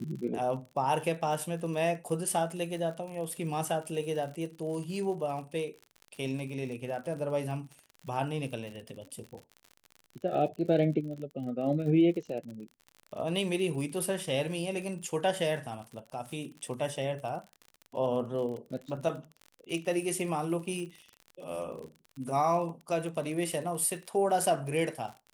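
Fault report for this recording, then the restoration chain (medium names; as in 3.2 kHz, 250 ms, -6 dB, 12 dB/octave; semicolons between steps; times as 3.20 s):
crackle 53 per s -39 dBFS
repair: de-click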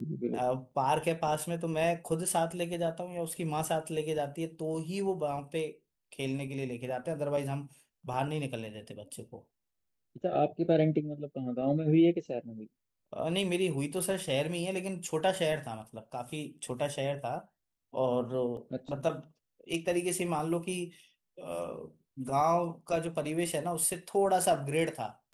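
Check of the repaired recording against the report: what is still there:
nothing left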